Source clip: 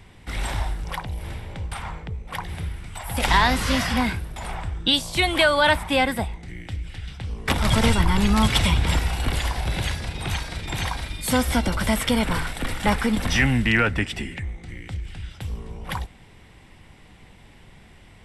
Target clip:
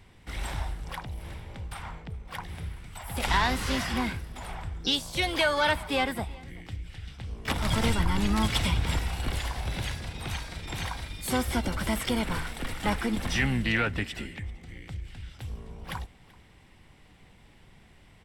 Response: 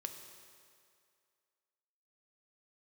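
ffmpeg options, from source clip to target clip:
-filter_complex "[0:a]aecho=1:1:384:0.0708,asplit=2[a][b];[b]asetrate=66075,aresample=44100,atempo=0.66742,volume=-12dB[c];[a][c]amix=inputs=2:normalize=0,volume=-7dB"

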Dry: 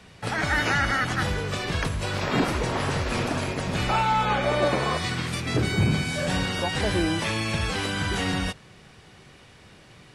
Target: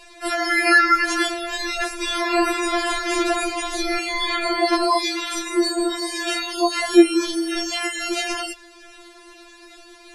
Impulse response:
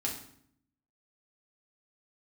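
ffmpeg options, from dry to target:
-af "acontrast=56,afftfilt=real='re*4*eq(mod(b,16),0)':imag='im*4*eq(mod(b,16),0)':win_size=2048:overlap=0.75,volume=3.5dB"

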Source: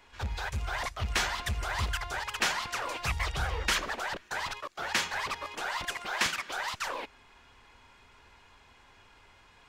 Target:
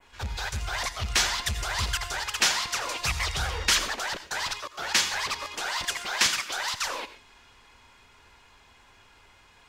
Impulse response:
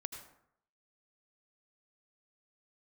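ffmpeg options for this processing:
-filter_complex "[0:a]adynamicequalizer=threshold=0.00447:dfrequency=5100:dqfactor=0.75:tfrequency=5100:tqfactor=0.75:attack=5:release=100:ratio=0.375:range=3:mode=boostabove:tftype=bell,asplit=2[a][b];[1:a]atrim=start_sample=2205,atrim=end_sample=6174,highshelf=f=3.6k:g=10[c];[b][c]afir=irnorm=-1:irlink=0,volume=0.5dB[d];[a][d]amix=inputs=2:normalize=0,volume=-4dB"

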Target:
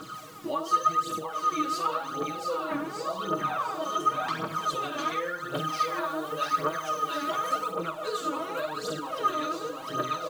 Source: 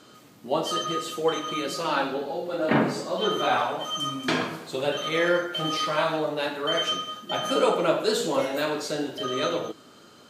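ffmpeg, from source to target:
-filter_complex "[0:a]aecho=1:1:6.3:0.78,aecho=1:1:701|1402|2103|2804|3505:0.562|0.208|0.077|0.0285|0.0105,acompressor=threshold=-35dB:ratio=12,acrusher=bits=8:mix=0:aa=0.5,equalizer=f=1.2k:w=4:g=12,aphaser=in_gain=1:out_gain=1:delay=3.6:decay=0.66:speed=0.9:type=triangular,asettb=1/sr,asplit=3[a][b][c];[a]atrim=end=5.544[d];[b]atrim=start=5.54:end=7.72,asetpts=PTS-STARTPTS,afade=t=in:d=0.004:c=qsin,afade=t=out:st=2.176:d=0.004:c=qsin,highshelf=f=6.9k:g=5.5[e];[c]atrim=start=7.716[f];[d][e]acrossfade=d=0.004:c1=hsin:c2=qsin[g];[g][f]acrossfade=d=0.004:c1=qsin:c2=hsin,volume=1.5dB"

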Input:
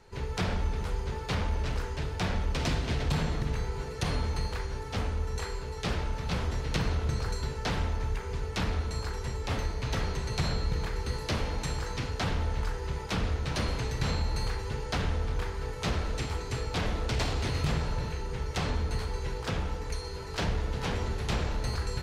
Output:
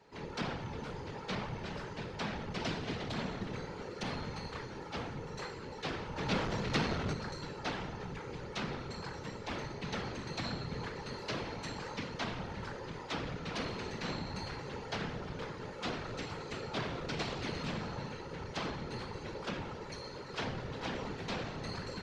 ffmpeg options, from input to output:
-filter_complex "[0:a]asplit=3[a][b][c];[a]afade=t=out:st=6.16:d=0.02[d];[b]acontrast=88,afade=t=in:st=6.16:d=0.02,afade=t=out:st=7.12:d=0.02[e];[c]afade=t=in:st=7.12:d=0.02[f];[d][e][f]amix=inputs=3:normalize=0,afftfilt=real='hypot(re,im)*cos(2*PI*random(0))':imag='hypot(re,im)*sin(2*PI*random(1))':win_size=512:overlap=0.75,asoftclip=type=tanh:threshold=-23dB,acrossover=split=150 6500:gain=0.2 1 0.0891[g][h][i];[g][h][i]amix=inputs=3:normalize=0,volume=2dB"

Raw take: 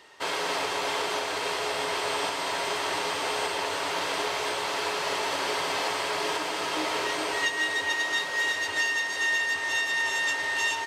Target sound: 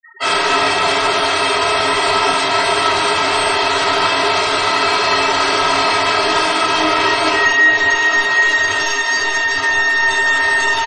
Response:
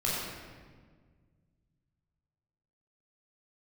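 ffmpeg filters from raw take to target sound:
-filter_complex "[0:a]asplit=2[a][b];[b]asoftclip=type=hard:threshold=-27dB,volume=-8.5dB[c];[a][c]amix=inputs=2:normalize=0,equalizer=f=560:t=o:w=0.4:g=-9[d];[1:a]atrim=start_sample=2205,atrim=end_sample=3969[e];[d][e]afir=irnorm=-1:irlink=0,acrossover=split=1600[f][g];[g]alimiter=limit=-19dB:level=0:latency=1:release=69[h];[f][h]amix=inputs=2:normalize=0,aecho=1:1:3.1:0.55,afftfilt=real='re*gte(hypot(re,im),0.0251)':imag='im*gte(hypot(re,im),0.0251)':win_size=1024:overlap=0.75,volume=7dB"

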